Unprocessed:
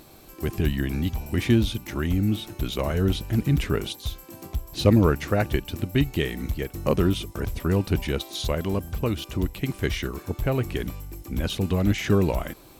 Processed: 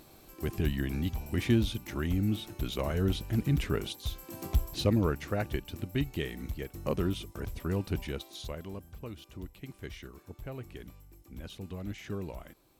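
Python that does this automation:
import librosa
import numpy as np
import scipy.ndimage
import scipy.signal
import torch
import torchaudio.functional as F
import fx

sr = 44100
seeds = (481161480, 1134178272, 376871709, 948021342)

y = fx.gain(x, sr, db=fx.line((3.98, -6.0), (4.63, 3.0), (4.88, -9.0), (7.99, -9.0), (8.88, -17.0)))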